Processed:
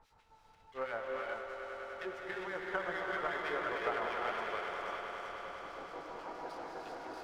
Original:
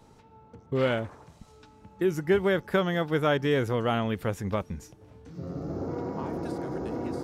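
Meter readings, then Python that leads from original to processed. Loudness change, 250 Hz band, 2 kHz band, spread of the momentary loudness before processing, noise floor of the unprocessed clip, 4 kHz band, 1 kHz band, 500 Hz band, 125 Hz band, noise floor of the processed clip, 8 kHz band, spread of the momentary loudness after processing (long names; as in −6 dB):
−11.0 dB, −19.5 dB, −4.0 dB, 13 LU, −55 dBFS, −9.5 dB, −4.0 dB, −12.0 dB, −28.0 dB, −65 dBFS, can't be measured, 10 LU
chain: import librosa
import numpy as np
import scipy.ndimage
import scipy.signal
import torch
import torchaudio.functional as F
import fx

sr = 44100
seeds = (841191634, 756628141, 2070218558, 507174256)

y = scipy.signal.sosfilt(scipy.signal.butter(2, 6000.0, 'lowpass', fs=sr, output='sos'), x)
y = fx.env_lowpass_down(y, sr, base_hz=1400.0, full_db=-20.0)
y = scipy.signal.sosfilt(scipy.signal.butter(2, 930.0, 'highpass', fs=sr, output='sos'), y)
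y = fx.env_lowpass_down(y, sr, base_hz=2600.0, full_db=-31.0)
y = fx.dmg_noise_colour(y, sr, seeds[0], colour='brown', level_db=-66.0)
y = fx.harmonic_tremolo(y, sr, hz=6.2, depth_pct=100, crossover_hz=1700.0)
y = fx.echo_swell(y, sr, ms=101, loudest=5, wet_db=-11.0)
y = fx.rev_gated(y, sr, seeds[1], gate_ms=430, shape='rising', drr_db=-1.0)
y = fx.running_max(y, sr, window=3)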